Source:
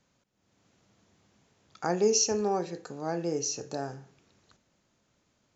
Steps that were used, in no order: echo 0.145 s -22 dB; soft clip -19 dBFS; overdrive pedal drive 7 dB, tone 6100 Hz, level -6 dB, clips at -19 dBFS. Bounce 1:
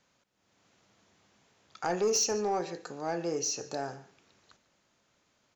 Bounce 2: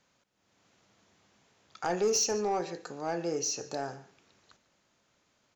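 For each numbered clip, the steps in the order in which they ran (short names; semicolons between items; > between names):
echo > soft clip > overdrive pedal; echo > overdrive pedal > soft clip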